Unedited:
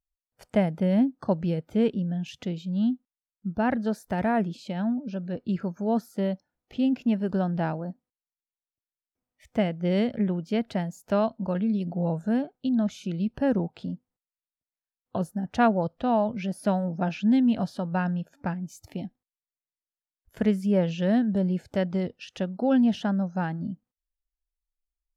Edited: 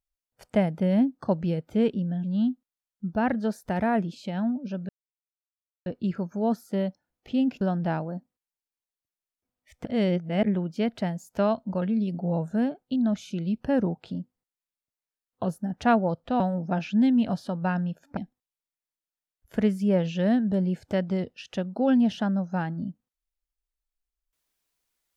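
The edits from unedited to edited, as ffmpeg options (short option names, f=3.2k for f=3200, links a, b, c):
-filter_complex "[0:a]asplit=8[a][b][c][d][e][f][g][h];[a]atrim=end=2.242[i];[b]atrim=start=2.658:end=5.31,asetpts=PTS-STARTPTS,afade=t=out:st=2.648:d=0.004:c=hsin,apad=pad_dur=0.97[j];[c]atrim=start=5.31:end=7.062,asetpts=PTS-STARTPTS,afade=t=in:d=0.004:c=hsin[k];[d]atrim=start=7.338:end=9.582[l];[e]atrim=start=9.578:end=10.162,asetpts=PTS-STARTPTS,areverse[m];[f]atrim=start=10.158:end=16.132[n];[g]atrim=start=16.698:end=18.472[o];[h]atrim=start=18.998[p];[j][k]concat=n=2:v=0:a=1[q];[i][q]acrossfade=d=0.004:c1=hsin:c2=hsin[r];[r][l]acrossfade=d=0.004:c1=hsin:c2=hsin[s];[s][m]acrossfade=d=0.004:c1=hsin:c2=hsin[t];[t][n]acrossfade=d=0.004:c1=hsin:c2=hsin[u];[u][o]acrossfade=d=0.004:c1=hsin:c2=hsin[v];[v][p]acrossfade=d=0.004:c1=hsin:c2=hsin"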